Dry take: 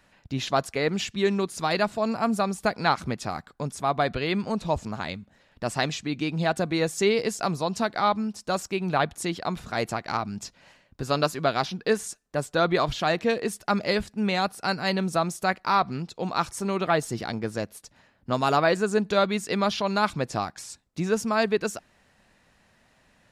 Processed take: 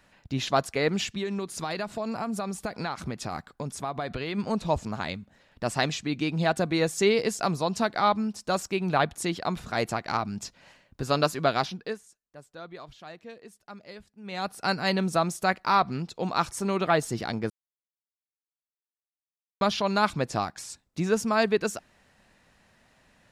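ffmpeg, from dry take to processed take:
ffmpeg -i in.wav -filter_complex "[0:a]asplit=3[link_01][link_02][link_03];[link_01]afade=type=out:start_time=1.15:duration=0.02[link_04];[link_02]acompressor=threshold=-27dB:ratio=6:attack=3.2:release=140:knee=1:detection=peak,afade=type=in:start_time=1.15:duration=0.02,afade=type=out:start_time=4.37:duration=0.02[link_05];[link_03]afade=type=in:start_time=4.37:duration=0.02[link_06];[link_04][link_05][link_06]amix=inputs=3:normalize=0,asplit=5[link_07][link_08][link_09][link_10][link_11];[link_07]atrim=end=12.01,asetpts=PTS-STARTPTS,afade=type=out:start_time=11.57:duration=0.44:silence=0.1[link_12];[link_08]atrim=start=12.01:end=14.23,asetpts=PTS-STARTPTS,volume=-20dB[link_13];[link_09]atrim=start=14.23:end=17.5,asetpts=PTS-STARTPTS,afade=type=in:duration=0.44:silence=0.1,afade=type=out:start_time=3.266:duration=0.004:curve=hsin[link_14];[link_10]atrim=start=17.5:end=19.61,asetpts=PTS-STARTPTS,volume=0[link_15];[link_11]atrim=start=19.61,asetpts=PTS-STARTPTS,afade=type=in:duration=0.004:curve=hsin[link_16];[link_12][link_13][link_14][link_15][link_16]concat=n=5:v=0:a=1" out.wav

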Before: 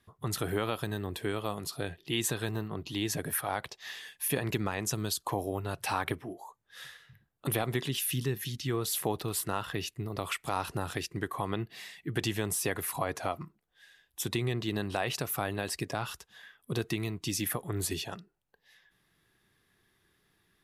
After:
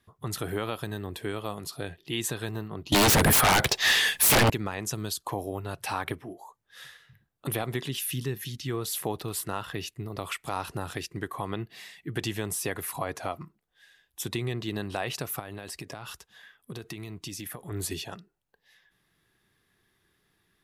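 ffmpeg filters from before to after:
ffmpeg -i in.wav -filter_complex "[0:a]asettb=1/sr,asplit=3[link_01][link_02][link_03];[link_01]atrim=end=2.924[link_04];[link_02]atrim=start=2.92:end=4.5,asetpts=PTS-STARTPTS,afade=type=in:duration=0.004:curve=qsin,afade=type=out:start_time=1.576:duration=0.004:curve=qsin,aeval=exprs='0.15*sin(PI/2*8.91*val(0)/0.15)':channel_layout=same[link_05];[link_03]atrim=start=4.496[link_06];[link_04][link_05]acrossfade=duration=0.004:curve1=hsin:curve2=qsin[link_07];[link_07][link_06]acrossfade=duration=0.004:curve1=qsin:curve2=hsin,asettb=1/sr,asplit=3[link_08][link_09][link_10];[link_08]atrim=end=15.394[link_11];[link_09]atrim=start=15.39:end=17.71,asetpts=PTS-STARTPTS,afade=type=in:duration=0.004:curve=qsin,afade=type=out:start_time=2.316:duration=0.004:curve=qsin,acompressor=threshold=-34dB:ratio=10:attack=3.2:release=140:knee=1:detection=peak[link_12];[link_10]atrim=start=17.706[link_13];[link_11][link_12]acrossfade=duration=0.004:curve1=hsin:curve2=qsin[link_14];[link_14][link_13]acrossfade=duration=0.004:curve1=qsin:curve2=hsin" out.wav

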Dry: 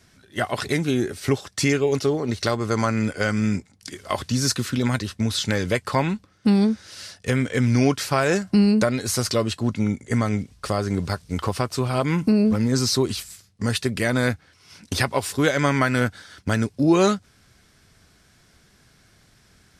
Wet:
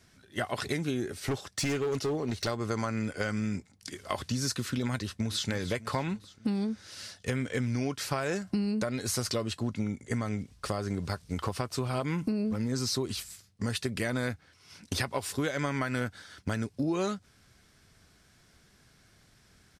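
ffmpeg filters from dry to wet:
ffmpeg -i in.wav -filter_complex "[0:a]asplit=3[link_01][link_02][link_03];[link_01]afade=type=out:start_time=1.14:duration=0.02[link_04];[link_02]asoftclip=type=hard:threshold=-19dB,afade=type=in:start_time=1.14:duration=0.02,afade=type=out:start_time=2.47:duration=0.02[link_05];[link_03]afade=type=in:start_time=2.47:duration=0.02[link_06];[link_04][link_05][link_06]amix=inputs=3:normalize=0,asplit=2[link_07][link_08];[link_08]afade=type=in:start_time=4.95:duration=0.01,afade=type=out:start_time=5.48:duration=0.01,aecho=0:1:300|600|900|1200|1500|1800:0.211349|0.116242|0.063933|0.0351632|0.0193397|0.0106369[link_09];[link_07][link_09]amix=inputs=2:normalize=0,acompressor=threshold=-22dB:ratio=6,volume=-5dB" out.wav

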